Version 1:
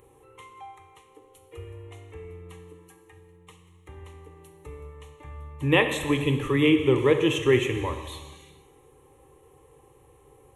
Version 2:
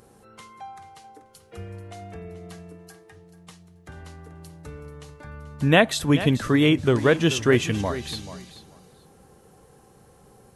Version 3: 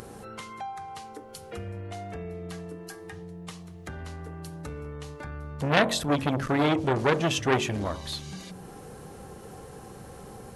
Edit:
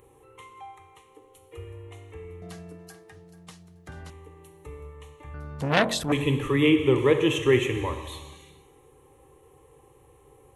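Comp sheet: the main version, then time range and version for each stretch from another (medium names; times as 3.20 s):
1
2.42–4.10 s: from 2
5.34–6.12 s: from 3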